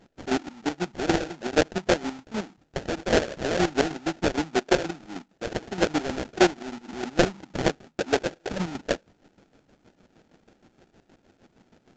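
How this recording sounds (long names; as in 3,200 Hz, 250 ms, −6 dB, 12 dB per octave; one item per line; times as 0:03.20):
aliases and images of a low sample rate 1,100 Hz, jitter 20%
chopped level 6.4 Hz, depth 65%, duty 40%
mu-law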